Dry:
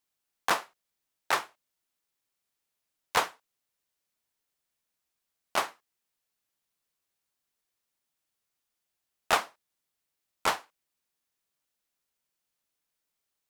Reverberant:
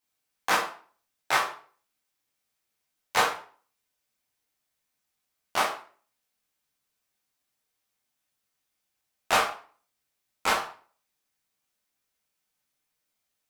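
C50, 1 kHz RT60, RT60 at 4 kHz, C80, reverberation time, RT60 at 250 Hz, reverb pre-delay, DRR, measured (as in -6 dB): 7.0 dB, 0.45 s, 0.35 s, 11.5 dB, 0.45 s, 0.40 s, 10 ms, -5.0 dB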